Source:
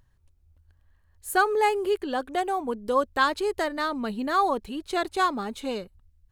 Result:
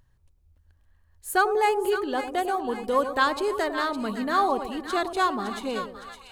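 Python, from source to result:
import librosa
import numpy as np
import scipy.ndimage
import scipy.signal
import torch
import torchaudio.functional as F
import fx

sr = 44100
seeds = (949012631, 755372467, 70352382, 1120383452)

y = fx.echo_split(x, sr, split_hz=1000.0, low_ms=99, high_ms=561, feedback_pct=52, wet_db=-9)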